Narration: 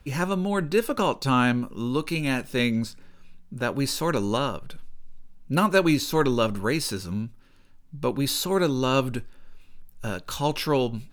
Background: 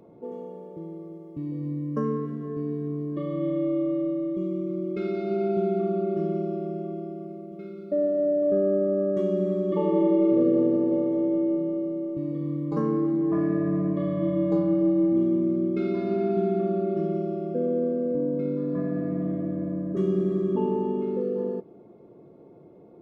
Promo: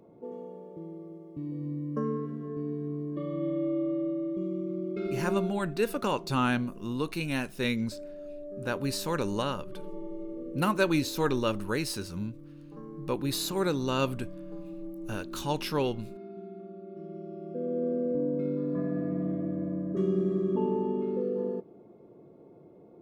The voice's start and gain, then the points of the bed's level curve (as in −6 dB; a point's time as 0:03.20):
5.05 s, −5.5 dB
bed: 0:05.34 −4 dB
0:05.70 −19 dB
0:16.81 −19 dB
0:17.94 −3 dB